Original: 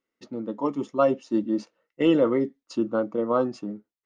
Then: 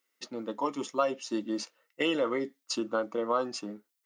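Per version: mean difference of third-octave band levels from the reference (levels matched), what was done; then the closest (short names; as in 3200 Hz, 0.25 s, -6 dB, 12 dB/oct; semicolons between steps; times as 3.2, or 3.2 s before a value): 6.0 dB: tilt +3 dB/oct; compressor 2.5:1, threshold -28 dBFS, peak gain reduction 8 dB; low shelf 440 Hz -5.5 dB; gain +3.5 dB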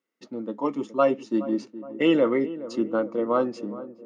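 2.5 dB: HPF 160 Hz 12 dB/oct; dynamic EQ 2200 Hz, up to +7 dB, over -48 dBFS, Q 2; on a send: darkening echo 0.419 s, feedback 61%, low-pass 910 Hz, level -14 dB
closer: second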